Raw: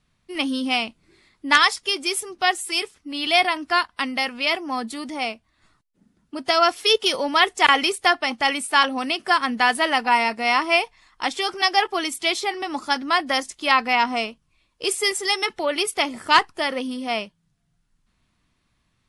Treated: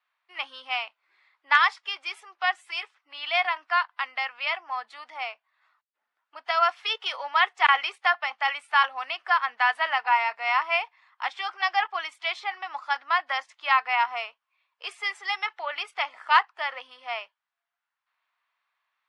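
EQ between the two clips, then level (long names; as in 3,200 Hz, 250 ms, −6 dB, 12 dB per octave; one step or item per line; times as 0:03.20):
high-pass filter 820 Hz 24 dB per octave
low-pass filter 2,300 Hz 12 dB per octave
−1.5 dB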